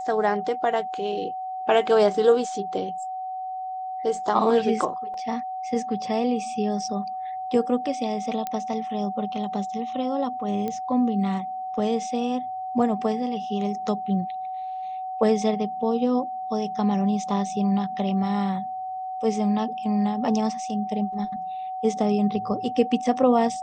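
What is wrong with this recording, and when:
whistle 750 Hz −29 dBFS
0:05.14: drop-out 2.1 ms
0:08.47: click −15 dBFS
0:10.68: click −17 dBFS

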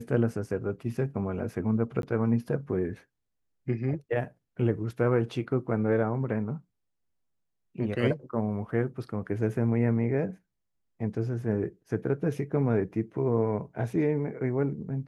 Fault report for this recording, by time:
0:02.02–0:02.03: drop-out 12 ms

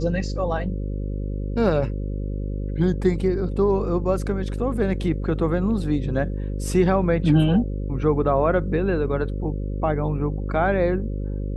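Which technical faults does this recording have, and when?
mains buzz 50 Hz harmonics 11 −27 dBFS

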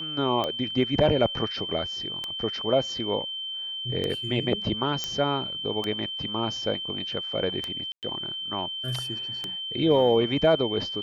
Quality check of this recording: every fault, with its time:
scratch tick 33 1/3 rpm −15 dBFS
whistle 3,100 Hz −31 dBFS
0:05.04: click −13 dBFS
0:07.92–0:08.03: drop-out 108 ms

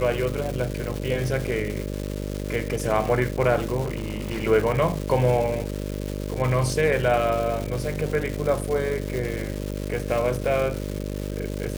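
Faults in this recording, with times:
mains buzz 50 Hz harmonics 12 −30 dBFS
surface crackle 460 per second −28 dBFS
0:03.81–0:04.45: clipping −23.5 dBFS

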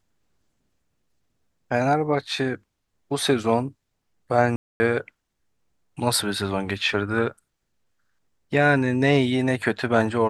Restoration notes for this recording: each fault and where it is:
0:04.56–0:04.80: drop-out 240 ms

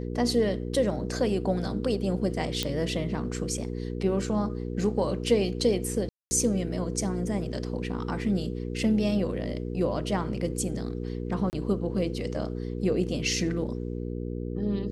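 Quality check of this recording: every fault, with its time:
mains hum 60 Hz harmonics 8 −33 dBFS
0:02.63: click −12 dBFS
0:06.09–0:06.31: drop-out 220 ms
0:11.50–0:11.53: drop-out 29 ms

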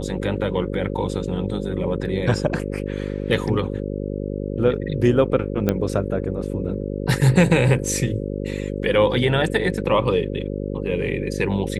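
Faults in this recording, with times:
mains buzz 50 Hz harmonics 11 −27 dBFS
0:05.69: click −7 dBFS

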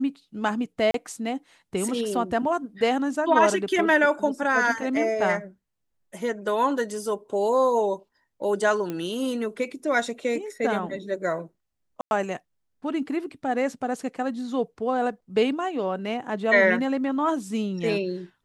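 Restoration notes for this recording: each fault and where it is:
0:00.91–0:00.94: drop-out 33 ms
0:08.90: click −18 dBFS
0:12.01–0:12.11: drop-out 101 ms

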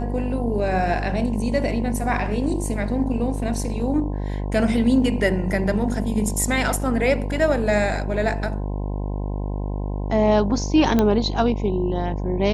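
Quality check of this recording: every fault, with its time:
mains buzz 50 Hz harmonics 21 −26 dBFS
0:10.99: click −7 dBFS

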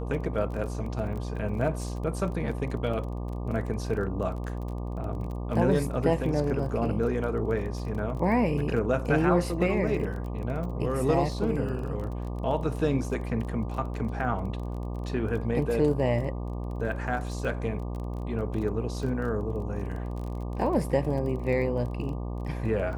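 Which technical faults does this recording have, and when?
mains buzz 60 Hz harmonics 20 −33 dBFS
surface crackle 23 per second −35 dBFS

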